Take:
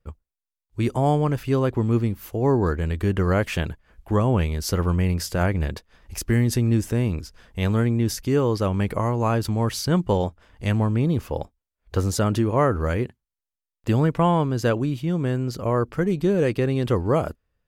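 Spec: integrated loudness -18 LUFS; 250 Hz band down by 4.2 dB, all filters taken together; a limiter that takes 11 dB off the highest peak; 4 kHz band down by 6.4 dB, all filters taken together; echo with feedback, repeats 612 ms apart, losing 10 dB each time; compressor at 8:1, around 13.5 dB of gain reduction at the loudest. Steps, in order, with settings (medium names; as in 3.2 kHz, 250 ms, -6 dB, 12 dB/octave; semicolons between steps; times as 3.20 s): peaking EQ 250 Hz -6 dB; peaking EQ 4 kHz -9 dB; compression 8:1, threshold -32 dBFS; peak limiter -31 dBFS; feedback delay 612 ms, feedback 32%, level -10 dB; trim +22.5 dB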